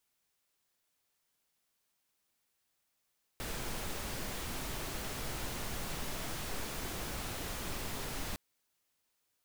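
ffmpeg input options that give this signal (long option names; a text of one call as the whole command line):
ffmpeg -f lavfi -i "anoisesrc=color=pink:amplitude=0.0575:duration=4.96:sample_rate=44100:seed=1" out.wav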